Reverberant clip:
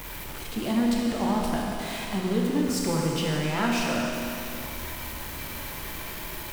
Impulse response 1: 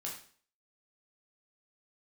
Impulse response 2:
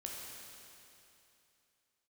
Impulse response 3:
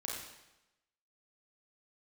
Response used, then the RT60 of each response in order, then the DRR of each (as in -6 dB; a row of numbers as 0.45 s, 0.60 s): 2; 0.45 s, 2.9 s, 0.95 s; -3.5 dB, -2.5 dB, -4.0 dB